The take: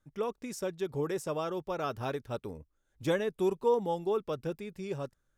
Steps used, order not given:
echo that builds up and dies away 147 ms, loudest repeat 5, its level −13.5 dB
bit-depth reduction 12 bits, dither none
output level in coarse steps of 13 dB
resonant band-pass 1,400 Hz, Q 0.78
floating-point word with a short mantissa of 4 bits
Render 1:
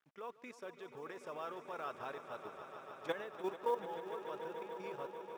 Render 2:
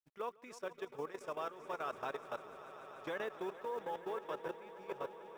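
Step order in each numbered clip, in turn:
output level in coarse steps, then echo that builds up and dies away, then bit-depth reduction, then resonant band-pass, then floating-point word with a short mantissa
resonant band-pass, then floating-point word with a short mantissa, then bit-depth reduction, then echo that builds up and dies away, then output level in coarse steps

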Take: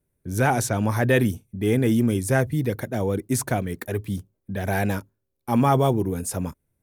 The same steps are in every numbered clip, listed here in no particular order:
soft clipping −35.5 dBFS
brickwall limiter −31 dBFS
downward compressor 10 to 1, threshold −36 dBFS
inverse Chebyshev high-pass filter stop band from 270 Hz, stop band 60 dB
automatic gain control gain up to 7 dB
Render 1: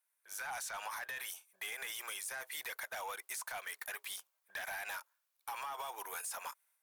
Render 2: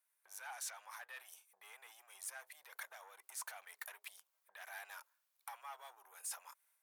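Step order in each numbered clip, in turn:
inverse Chebyshev high-pass filter, then brickwall limiter, then automatic gain control, then downward compressor, then soft clipping
brickwall limiter, then automatic gain control, then downward compressor, then soft clipping, then inverse Chebyshev high-pass filter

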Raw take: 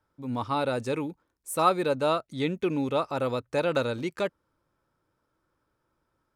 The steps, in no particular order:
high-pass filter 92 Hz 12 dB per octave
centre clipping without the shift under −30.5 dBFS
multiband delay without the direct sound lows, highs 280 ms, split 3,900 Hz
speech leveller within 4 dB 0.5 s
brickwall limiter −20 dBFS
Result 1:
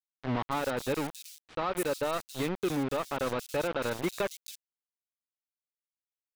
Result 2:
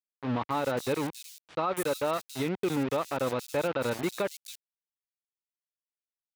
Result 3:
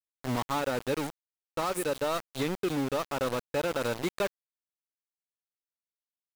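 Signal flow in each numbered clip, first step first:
high-pass filter, then brickwall limiter, then centre clipping without the shift, then speech leveller, then multiband delay without the direct sound
speech leveller, then centre clipping without the shift, then multiband delay without the direct sound, then brickwall limiter, then high-pass filter
multiband delay without the direct sound, then brickwall limiter, then high-pass filter, then centre clipping without the shift, then speech leveller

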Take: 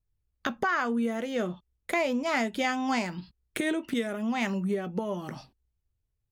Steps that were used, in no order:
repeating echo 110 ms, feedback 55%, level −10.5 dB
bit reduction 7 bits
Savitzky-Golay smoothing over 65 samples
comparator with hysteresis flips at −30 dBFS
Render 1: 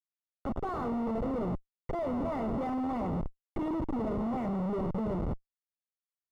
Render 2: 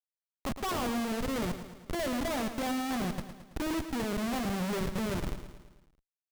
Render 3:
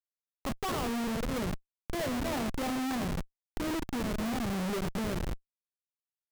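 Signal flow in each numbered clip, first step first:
repeating echo, then bit reduction, then comparator with hysteresis, then Savitzky-Golay smoothing
Savitzky-Golay smoothing, then bit reduction, then comparator with hysteresis, then repeating echo
Savitzky-Golay smoothing, then bit reduction, then repeating echo, then comparator with hysteresis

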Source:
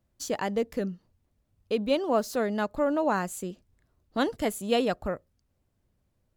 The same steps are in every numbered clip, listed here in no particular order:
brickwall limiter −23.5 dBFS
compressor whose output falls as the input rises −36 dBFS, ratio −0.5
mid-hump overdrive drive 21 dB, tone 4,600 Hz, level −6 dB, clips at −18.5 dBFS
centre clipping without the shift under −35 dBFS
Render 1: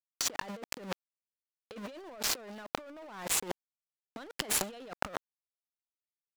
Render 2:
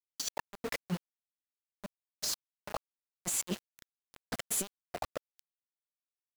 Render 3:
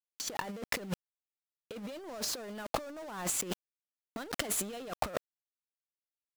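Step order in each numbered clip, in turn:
centre clipping without the shift, then brickwall limiter, then mid-hump overdrive, then compressor whose output falls as the input rises
mid-hump overdrive, then compressor whose output falls as the input rises, then brickwall limiter, then centre clipping without the shift
mid-hump overdrive, then brickwall limiter, then centre clipping without the shift, then compressor whose output falls as the input rises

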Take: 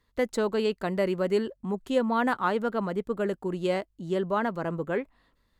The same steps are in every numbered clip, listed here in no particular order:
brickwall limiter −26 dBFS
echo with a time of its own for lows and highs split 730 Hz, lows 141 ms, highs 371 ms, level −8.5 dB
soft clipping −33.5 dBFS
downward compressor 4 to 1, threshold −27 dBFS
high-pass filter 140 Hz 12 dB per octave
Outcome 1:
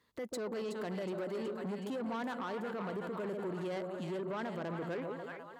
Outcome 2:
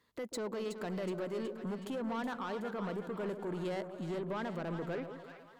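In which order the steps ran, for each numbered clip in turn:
downward compressor, then echo with a time of its own for lows and highs, then brickwall limiter, then soft clipping, then high-pass filter
downward compressor, then brickwall limiter, then high-pass filter, then soft clipping, then echo with a time of its own for lows and highs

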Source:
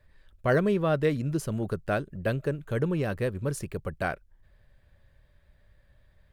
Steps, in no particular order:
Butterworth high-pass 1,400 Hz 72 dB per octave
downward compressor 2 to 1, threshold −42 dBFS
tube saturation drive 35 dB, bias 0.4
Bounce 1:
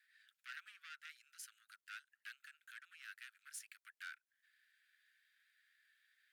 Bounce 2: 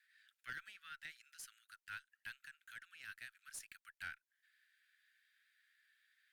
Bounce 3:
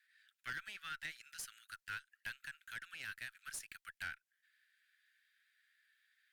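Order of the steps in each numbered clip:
downward compressor, then tube saturation, then Butterworth high-pass
downward compressor, then Butterworth high-pass, then tube saturation
Butterworth high-pass, then downward compressor, then tube saturation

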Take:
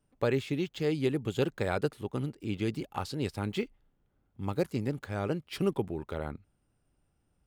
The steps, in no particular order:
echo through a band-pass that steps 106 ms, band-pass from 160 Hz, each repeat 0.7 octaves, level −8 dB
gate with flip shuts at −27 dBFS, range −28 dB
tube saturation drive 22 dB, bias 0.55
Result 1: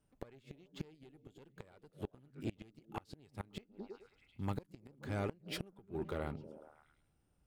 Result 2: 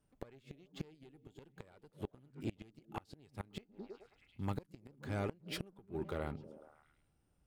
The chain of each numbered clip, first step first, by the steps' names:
echo through a band-pass that steps, then tube saturation, then gate with flip
tube saturation, then echo through a band-pass that steps, then gate with flip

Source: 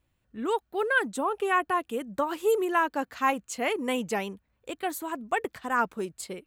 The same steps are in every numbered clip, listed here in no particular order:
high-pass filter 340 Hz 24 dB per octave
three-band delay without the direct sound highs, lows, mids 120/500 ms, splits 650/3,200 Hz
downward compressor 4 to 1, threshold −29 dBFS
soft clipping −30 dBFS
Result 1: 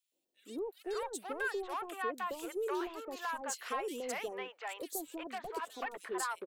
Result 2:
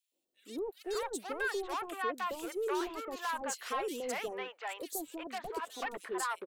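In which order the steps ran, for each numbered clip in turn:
downward compressor, then high-pass filter, then soft clipping, then three-band delay without the direct sound
high-pass filter, then soft clipping, then downward compressor, then three-band delay without the direct sound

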